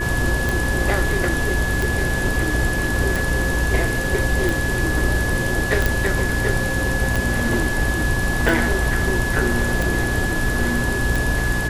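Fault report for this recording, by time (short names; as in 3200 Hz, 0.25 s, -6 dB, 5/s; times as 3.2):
hum 60 Hz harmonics 7 -26 dBFS
tick 45 rpm
tone 1700 Hz -24 dBFS
4.04 gap 2.6 ms
5.86 pop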